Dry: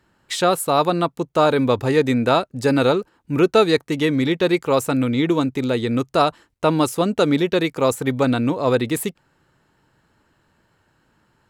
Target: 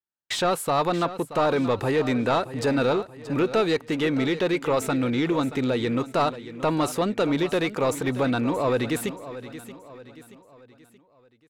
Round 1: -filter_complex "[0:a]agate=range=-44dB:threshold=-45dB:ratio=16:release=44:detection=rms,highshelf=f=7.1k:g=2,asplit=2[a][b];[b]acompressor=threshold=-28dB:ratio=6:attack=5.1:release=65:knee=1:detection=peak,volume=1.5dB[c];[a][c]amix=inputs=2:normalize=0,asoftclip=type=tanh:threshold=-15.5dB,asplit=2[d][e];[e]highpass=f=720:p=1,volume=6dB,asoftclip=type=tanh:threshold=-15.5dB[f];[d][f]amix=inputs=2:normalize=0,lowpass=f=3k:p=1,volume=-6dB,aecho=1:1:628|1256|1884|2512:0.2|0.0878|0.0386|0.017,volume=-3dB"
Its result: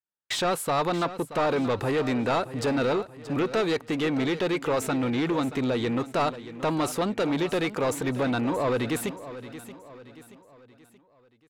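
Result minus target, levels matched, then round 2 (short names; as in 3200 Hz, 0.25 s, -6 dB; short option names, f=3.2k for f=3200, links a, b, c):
soft clip: distortion +7 dB
-filter_complex "[0:a]agate=range=-44dB:threshold=-45dB:ratio=16:release=44:detection=rms,highshelf=f=7.1k:g=2,asplit=2[a][b];[b]acompressor=threshold=-28dB:ratio=6:attack=5.1:release=65:knee=1:detection=peak,volume=1.5dB[c];[a][c]amix=inputs=2:normalize=0,asoftclip=type=tanh:threshold=-8.5dB,asplit=2[d][e];[e]highpass=f=720:p=1,volume=6dB,asoftclip=type=tanh:threshold=-15.5dB[f];[d][f]amix=inputs=2:normalize=0,lowpass=f=3k:p=1,volume=-6dB,aecho=1:1:628|1256|1884|2512:0.2|0.0878|0.0386|0.017,volume=-3dB"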